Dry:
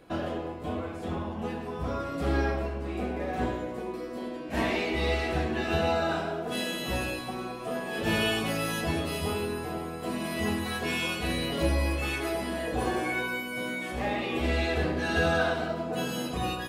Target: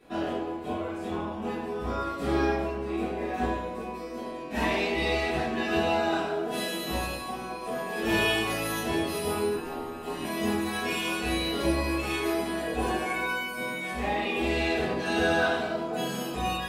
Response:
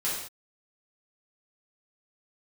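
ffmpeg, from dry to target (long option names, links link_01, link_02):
-filter_complex "[0:a]asettb=1/sr,asplit=3[link_01][link_02][link_03];[link_01]atrim=end=9.554[link_04];[link_02]atrim=start=9.55:end=10.24,asetpts=PTS-STARTPTS,afade=type=in:duration=0.004:curve=qsin,afade=type=out:start_time=0.686:duration=0.004:curve=qsin,aeval=exprs='val(0)*sin(2*PI*76*n/s)':channel_layout=same[link_05];[link_03]atrim=start=10.236[link_06];[link_04][link_05]acrossfade=duration=0.004:curve1=hsin:curve2=qsin[link_07];[link_07][link_06]acrossfade=duration=0.004:curve1=qsin:curve2=hsin[link_08];[1:a]atrim=start_sample=2205,atrim=end_sample=6615,asetrate=83790,aresample=44100[link_09];[link_08][link_09]afir=irnorm=-1:irlink=0"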